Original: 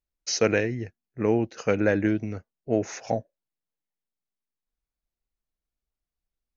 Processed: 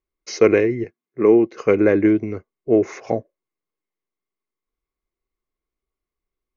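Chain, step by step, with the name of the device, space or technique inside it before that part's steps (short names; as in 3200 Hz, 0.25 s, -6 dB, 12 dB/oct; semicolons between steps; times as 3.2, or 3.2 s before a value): 0.84–1.52 HPF 150 Hz; inside a helmet (high shelf 4700 Hz -9.5 dB; small resonant body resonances 380/1100/2100 Hz, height 13 dB, ringing for 25 ms); gain +1 dB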